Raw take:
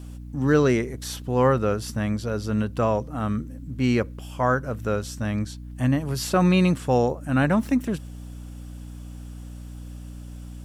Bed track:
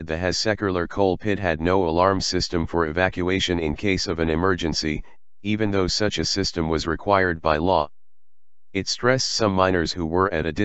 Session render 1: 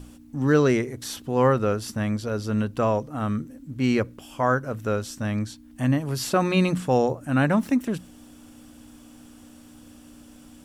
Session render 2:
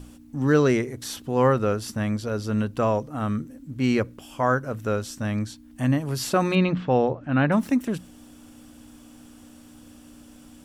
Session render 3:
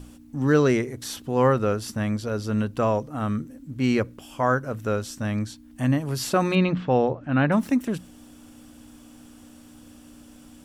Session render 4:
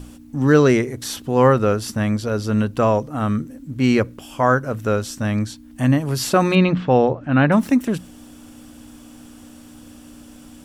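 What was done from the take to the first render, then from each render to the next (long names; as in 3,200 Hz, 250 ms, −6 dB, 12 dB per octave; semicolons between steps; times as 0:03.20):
mains-hum notches 60/120/180 Hz
0:06.55–0:07.52: low-pass filter 3,900 Hz 24 dB per octave
no processing that can be heard
level +5.5 dB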